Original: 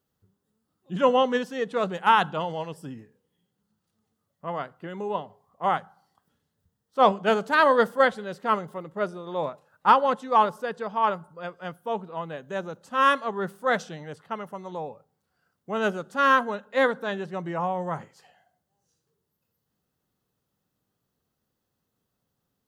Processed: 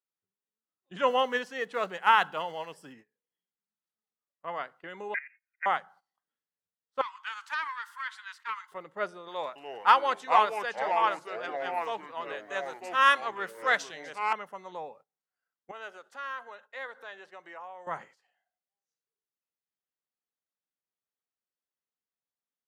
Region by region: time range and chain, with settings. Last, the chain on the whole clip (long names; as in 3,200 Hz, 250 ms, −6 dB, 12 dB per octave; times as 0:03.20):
0:01.07–0:02.93: one scale factor per block 7 bits + notch filter 3,600 Hz, Q 15
0:05.14–0:05.66: one scale factor per block 5 bits + voice inversion scrambler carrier 2,600 Hz + output level in coarse steps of 16 dB
0:07.01–0:08.72: downward compressor 12 to 1, threshold −25 dBFS + Butterworth high-pass 910 Hz 96 dB per octave + highs frequency-modulated by the lows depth 0.11 ms
0:09.28–0:14.33: spectral tilt +2 dB per octave + delay with pitch and tempo change per echo 276 ms, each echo −4 semitones, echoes 3, each echo −6 dB
0:15.71–0:17.87: high-pass filter 420 Hz + downward compressor 2 to 1, threshold −45 dBFS
whole clip: meter weighting curve A; noise gate −51 dBFS, range −16 dB; parametric band 2,000 Hz +5 dB 0.67 octaves; level −3.5 dB